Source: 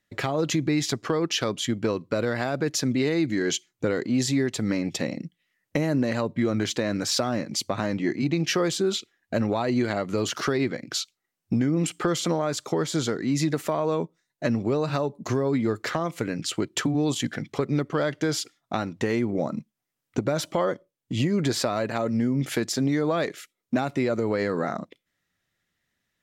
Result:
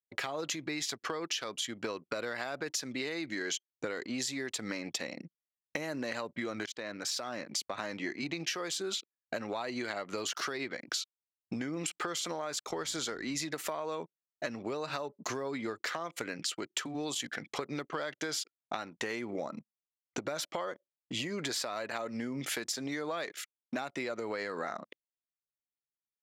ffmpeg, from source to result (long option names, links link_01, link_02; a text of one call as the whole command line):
ffmpeg -i in.wav -filter_complex "[0:a]asettb=1/sr,asplit=3[link_01][link_02][link_03];[link_01]atrim=end=12.694[link_04];[link_02]atrim=start=12.69:end=13.44,asetpts=PTS-STARTPTS,afade=type=in:duration=0.004:curve=qsin,afade=type=out:start_time=0.746:duration=0.004:curve=qsin,aeval=exprs='val(0)+0.0112*(sin(2*PI*60*n/s)+sin(2*PI*2*60*n/s)/2+sin(2*PI*3*60*n/s)/3+sin(2*PI*4*60*n/s)/4+sin(2*PI*5*60*n/s)/5)':channel_layout=same[link_05];[link_03]atrim=start=13.436[link_06];[link_04][link_05]acrossfade=duration=0.004:curve1=hsin:curve2=qsin[link_07];[link_07][link_06]acrossfade=duration=0.004:curve1=qsin:curve2=hsin,asplit=2[link_08][link_09];[link_08]atrim=end=6.66,asetpts=PTS-STARTPTS,afade=type=out:start_time=6.656:duration=0.004:curve=hsin:silence=0.199526[link_10];[link_09]atrim=start=6.66,asetpts=PTS-STARTPTS,afade=type=in:duration=1.18:silence=0.199526[link_11];[link_10][link_11]concat=n=2:v=0:a=1,anlmdn=0.1,highpass=frequency=1100:poles=1,acompressor=threshold=-37dB:ratio=6,volume=4dB" out.wav